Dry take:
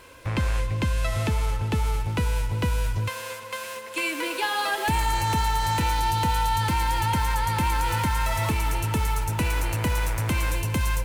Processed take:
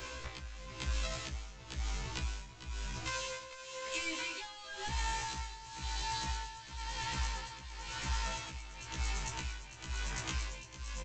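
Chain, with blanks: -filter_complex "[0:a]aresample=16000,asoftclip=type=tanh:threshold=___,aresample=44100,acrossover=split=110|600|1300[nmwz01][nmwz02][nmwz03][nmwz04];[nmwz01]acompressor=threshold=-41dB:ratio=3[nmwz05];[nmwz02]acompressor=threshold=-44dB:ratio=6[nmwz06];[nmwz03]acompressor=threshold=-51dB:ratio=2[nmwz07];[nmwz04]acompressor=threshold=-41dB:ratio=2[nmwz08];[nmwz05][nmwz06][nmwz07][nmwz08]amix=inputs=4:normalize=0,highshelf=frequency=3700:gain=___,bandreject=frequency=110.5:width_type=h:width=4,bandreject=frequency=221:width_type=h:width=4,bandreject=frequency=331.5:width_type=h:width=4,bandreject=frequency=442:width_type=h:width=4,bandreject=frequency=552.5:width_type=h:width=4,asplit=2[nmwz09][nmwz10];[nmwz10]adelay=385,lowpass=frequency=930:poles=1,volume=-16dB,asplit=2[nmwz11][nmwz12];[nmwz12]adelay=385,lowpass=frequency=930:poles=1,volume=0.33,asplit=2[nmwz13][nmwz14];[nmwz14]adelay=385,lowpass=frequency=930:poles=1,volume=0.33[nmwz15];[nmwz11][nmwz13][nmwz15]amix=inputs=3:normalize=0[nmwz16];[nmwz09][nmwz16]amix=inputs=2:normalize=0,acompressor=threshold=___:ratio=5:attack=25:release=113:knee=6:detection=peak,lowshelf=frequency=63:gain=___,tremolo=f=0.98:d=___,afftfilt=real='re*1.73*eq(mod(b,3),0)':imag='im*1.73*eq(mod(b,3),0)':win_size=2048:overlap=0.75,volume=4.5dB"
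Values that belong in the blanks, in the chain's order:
-26dB, 11.5, -39dB, 10, 0.78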